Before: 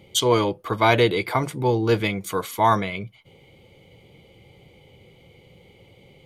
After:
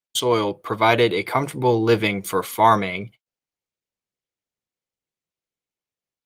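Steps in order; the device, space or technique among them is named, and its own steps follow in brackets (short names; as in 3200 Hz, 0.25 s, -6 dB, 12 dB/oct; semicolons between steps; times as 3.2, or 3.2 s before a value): video call (HPF 150 Hz 6 dB/oct; AGC gain up to 5 dB; gate -40 dBFS, range -50 dB; Opus 32 kbps 48000 Hz)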